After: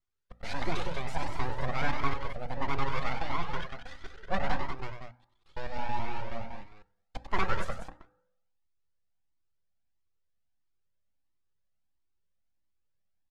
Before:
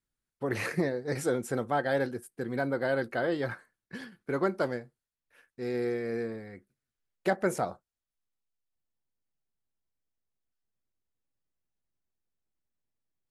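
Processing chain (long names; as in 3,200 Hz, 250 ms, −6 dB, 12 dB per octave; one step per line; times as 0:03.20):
slices reordered back to front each 107 ms, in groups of 2
full-wave rectification
low-pass filter 5,700 Hz 12 dB per octave
mains-hum notches 60/120/180/240/300 Hz
loudspeakers that aren't time-aligned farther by 33 metres −8 dB, 65 metres −7 dB
on a send at −14.5 dB: convolution reverb RT60 0.85 s, pre-delay 3 ms
on the sum: flanger whose copies keep moving one way rising 1.5 Hz
level +4 dB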